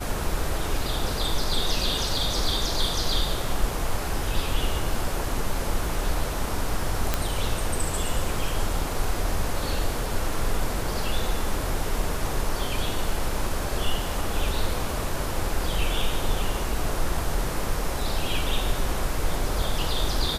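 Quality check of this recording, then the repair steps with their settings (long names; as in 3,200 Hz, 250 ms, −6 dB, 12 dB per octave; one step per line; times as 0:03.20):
0:07.14: click −7 dBFS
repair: click removal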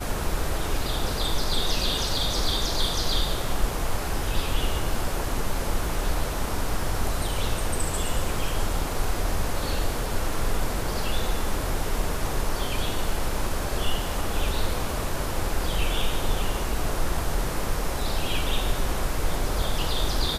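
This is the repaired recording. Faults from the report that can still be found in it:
none of them is left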